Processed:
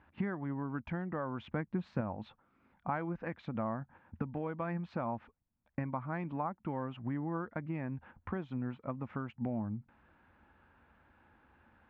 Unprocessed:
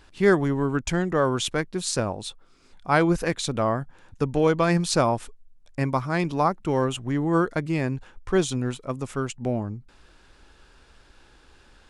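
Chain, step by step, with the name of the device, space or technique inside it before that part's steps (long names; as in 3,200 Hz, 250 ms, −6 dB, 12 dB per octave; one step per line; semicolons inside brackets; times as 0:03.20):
noise gate −44 dBFS, range −9 dB
bass amplifier (downward compressor 5 to 1, threshold −37 dBFS, peak gain reduction 20.5 dB; loudspeaker in its box 82–2,200 Hz, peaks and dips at 84 Hz +7 dB, 220 Hz +7 dB, 410 Hz −8 dB, 870 Hz +4 dB)
0:01.51–0:02.01: low-shelf EQ 350 Hz +7 dB
level +1 dB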